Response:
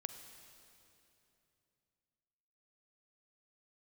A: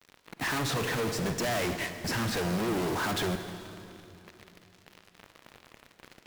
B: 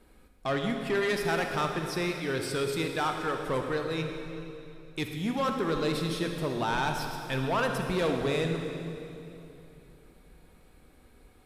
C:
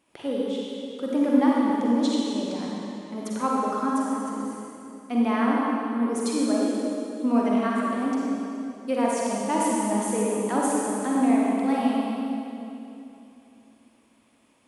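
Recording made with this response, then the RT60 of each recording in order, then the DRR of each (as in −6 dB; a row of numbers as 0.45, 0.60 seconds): A; 2.9, 2.9, 2.9 seconds; 8.0, 3.5, −4.5 decibels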